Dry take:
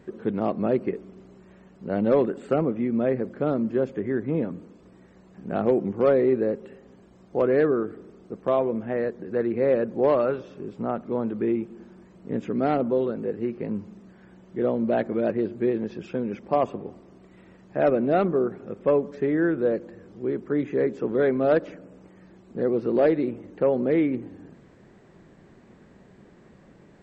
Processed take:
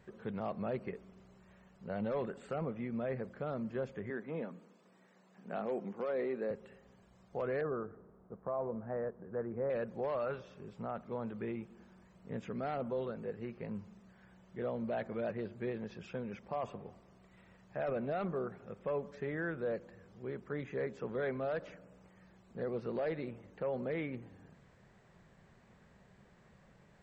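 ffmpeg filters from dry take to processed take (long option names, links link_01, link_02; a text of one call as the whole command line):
ffmpeg -i in.wav -filter_complex "[0:a]asettb=1/sr,asplit=3[link_01][link_02][link_03];[link_01]atrim=end=4.104[link_04];[link_02]atrim=start=4.1:end=6.51,asetpts=PTS-STARTPTS,afade=type=in:duration=0.004:curve=qsin,afade=type=out:start_time=2.406:duration=0.004:curve=qsin,highpass=frequency=190:width=0.5412,highpass=frequency=190:width=1.3066[link_05];[link_03]atrim=start=6.506[link_06];[link_04][link_05]acrossfade=duration=0.004:curve1=hsin:curve2=qsin[link_07];[link_07][link_06]acrossfade=duration=0.004:curve1=qsin:curve2=hsin,asettb=1/sr,asplit=3[link_08][link_09][link_10];[link_08]atrim=end=7.614[link_11];[link_09]atrim=start=7.61:end=9.7,asetpts=PTS-STARTPTS,afade=type=in:duration=0.004:curve=qsin,afade=type=out:start_time=2.086:duration=0.004:curve=qsin,lowpass=frequency=1400:width=0.5412,lowpass=frequency=1400:width=1.3066[link_12];[link_10]atrim=start=9.696[link_13];[link_11][link_12]acrossfade=duration=0.004:curve1=hsin:curve2=qsin[link_14];[link_14][link_13]acrossfade=duration=0.004:curve1=qsin:curve2=hsin,equalizer=frequency=310:width_type=o:width=1:gain=-13.5,alimiter=limit=-22.5dB:level=0:latency=1:release=10,volume=-6dB" out.wav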